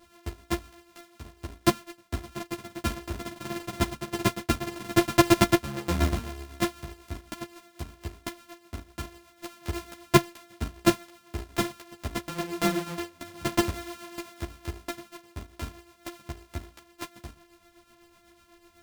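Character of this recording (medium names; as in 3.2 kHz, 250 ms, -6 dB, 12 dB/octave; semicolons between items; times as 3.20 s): a buzz of ramps at a fixed pitch in blocks of 128 samples; tremolo triangle 8 Hz, depth 60%; a shimmering, thickened sound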